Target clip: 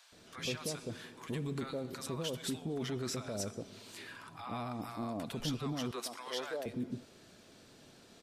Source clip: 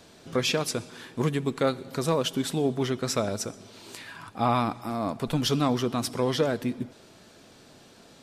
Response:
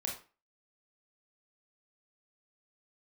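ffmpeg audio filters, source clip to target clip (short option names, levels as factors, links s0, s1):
-filter_complex "[0:a]asettb=1/sr,asplit=3[s0][s1][s2];[s0]atrim=end=5.794[s3];[s1]atrim=start=5.79:end=6.54,asetpts=PTS-STARTPTS,afade=t=in:d=0.004:c=qsin,afade=t=out:st=0.746:d=0.004:c=qsin,highpass=610[s4];[s2]atrim=start=6.536[s5];[s3][s4]acrossfade=d=0.004:c1=hsin:c2=qsin[s6];[s6][s5]acrossfade=d=0.004:c1=qsin:c2=hsin,alimiter=limit=0.0668:level=0:latency=1:release=16,acrossover=split=860[s7][s8];[s7]adelay=120[s9];[s9][s8]amix=inputs=2:normalize=0,volume=0.531"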